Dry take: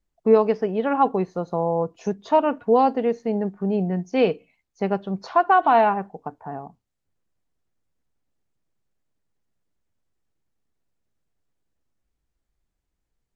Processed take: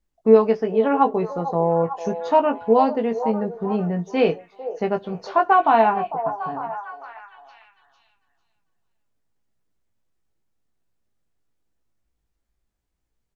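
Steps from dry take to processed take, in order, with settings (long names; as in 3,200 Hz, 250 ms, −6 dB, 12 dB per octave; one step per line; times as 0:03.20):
double-tracking delay 18 ms −6 dB
echo through a band-pass that steps 450 ms, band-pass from 630 Hz, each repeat 0.7 octaves, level −9 dB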